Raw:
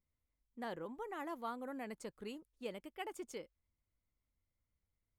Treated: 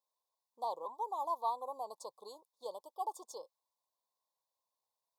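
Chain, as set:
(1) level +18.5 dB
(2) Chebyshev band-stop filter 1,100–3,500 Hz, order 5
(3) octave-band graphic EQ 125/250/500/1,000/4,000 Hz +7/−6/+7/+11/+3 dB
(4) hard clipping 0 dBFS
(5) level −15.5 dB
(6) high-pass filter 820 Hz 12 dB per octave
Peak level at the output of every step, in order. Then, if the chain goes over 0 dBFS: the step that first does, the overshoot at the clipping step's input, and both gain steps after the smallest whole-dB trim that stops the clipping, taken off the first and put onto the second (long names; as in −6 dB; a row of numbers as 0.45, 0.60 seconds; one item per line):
−12.5, −13.0, −6.0, −6.0, −21.5, −24.0 dBFS
no step passes full scale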